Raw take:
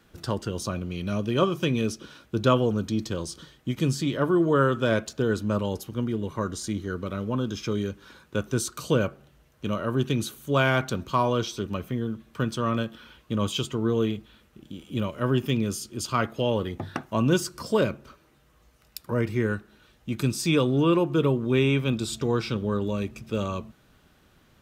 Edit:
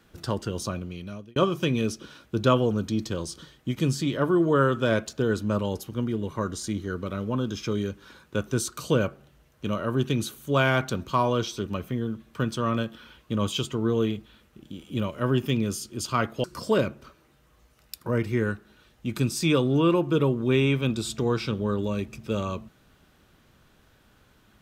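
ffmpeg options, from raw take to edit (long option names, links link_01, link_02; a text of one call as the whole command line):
ffmpeg -i in.wav -filter_complex "[0:a]asplit=3[link_01][link_02][link_03];[link_01]atrim=end=1.36,asetpts=PTS-STARTPTS,afade=type=out:start_time=0.65:duration=0.71[link_04];[link_02]atrim=start=1.36:end=16.442,asetpts=PTS-STARTPTS,afade=type=in:duration=0.004:curve=hsin[link_05];[link_03]atrim=start=17.468[link_06];[link_04][link_05]concat=n=2:v=0:a=1[link_07];[link_07][link_06]acrossfade=duration=0.004:curve1=hsin:curve2=hsin" out.wav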